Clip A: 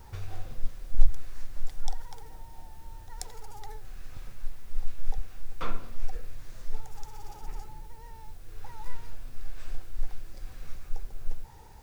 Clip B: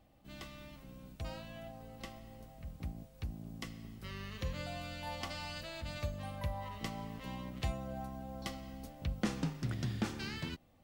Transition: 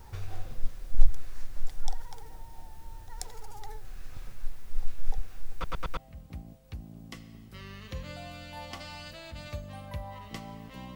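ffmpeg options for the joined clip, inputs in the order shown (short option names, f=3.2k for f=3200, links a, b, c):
-filter_complex "[0:a]apad=whole_dur=10.95,atrim=end=10.95,asplit=4[a][b][c][d];[a]atrim=end=5.642[e];[b]atrim=start=5.528:end=5.642[f];[c]atrim=start=5.528:end=5.642[g];[d]atrim=start=5.528:end=5.642[h];[1:a]atrim=start=2.468:end=7.45[i];[e][f]acrossfade=d=0.004:c1=hsin:c2=hsin[j];[j][g]acrossfade=d=0.004:c1=hsin:c2=hsin[k];[k][h]acrossfade=d=0.004:c1=hsin:c2=hsin[l];[l][i]acrossfade=d=0.004:c1=hsin:c2=hsin"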